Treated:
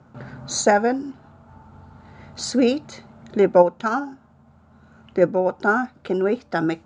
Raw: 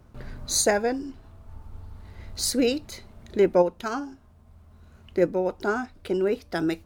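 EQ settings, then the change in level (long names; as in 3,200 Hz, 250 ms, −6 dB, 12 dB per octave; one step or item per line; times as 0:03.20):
high-frequency loss of the air 94 metres
loudspeaker in its box 120–8,500 Hz, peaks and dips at 140 Hz +10 dB, 230 Hz +7 dB, 550 Hz +4 dB, 830 Hz +9 dB, 1,400 Hz +9 dB, 7,100 Hz +8 dB
+1.5 dB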